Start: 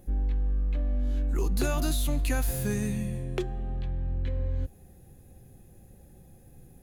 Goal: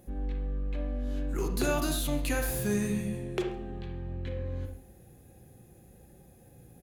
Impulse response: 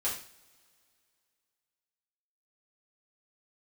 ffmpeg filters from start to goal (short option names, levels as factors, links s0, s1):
-filter_complex "[0:a]highpass=f=120:p=1,aecho=1:1:135:0.0708,asplit=2[s0][s1];[1:a]atrim=start_sample=2205,lowpass=3700,adelay=34[s2];[s1][s2]afir=irnorm=-1:irlink=0,volume=0.376[s3];[s0][s3]amix=inputs=2:normalize=0"